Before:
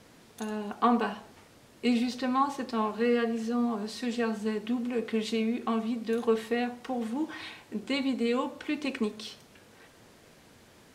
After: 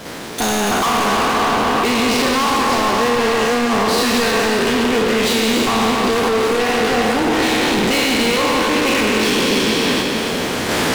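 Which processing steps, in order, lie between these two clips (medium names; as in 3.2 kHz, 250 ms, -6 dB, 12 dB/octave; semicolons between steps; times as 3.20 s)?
spectral sustain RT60 2.56 s; recorder AGC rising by 8.6 dB/s; treble shelf 6.3 kHz -7 dB; harmonic-percussive split harmonic -9 dB; bass shelf 130 Hz -10.5 dB; waveshaping leveller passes 5; level held to a coarse grid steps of 13 dB; power-law waveshaper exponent 0.35; on a send: two-band feedback delay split 1.4 kHz, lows 469 ms, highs 283 ms, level -7 dB; on the sum: trim +4.5 dB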